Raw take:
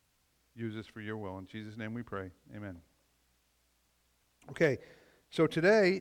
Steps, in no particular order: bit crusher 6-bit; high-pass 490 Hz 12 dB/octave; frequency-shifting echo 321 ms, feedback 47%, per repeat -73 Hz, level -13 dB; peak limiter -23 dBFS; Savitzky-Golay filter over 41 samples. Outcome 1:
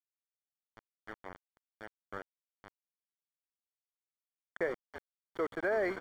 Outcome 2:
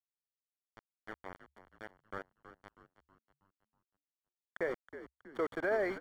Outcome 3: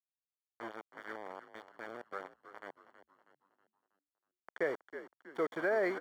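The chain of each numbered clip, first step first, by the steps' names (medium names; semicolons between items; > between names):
frequency-shifting echo > high-pass > bit crusher > Savitzky-Golay filter > peak limiter; high-pass > bit crusher > peak limiter > Savitzky-Golay filter > frequency-shifting echo; bit crusher > Savitzky-Golay filter > frequency-shifting echo > high-pass > peak limiter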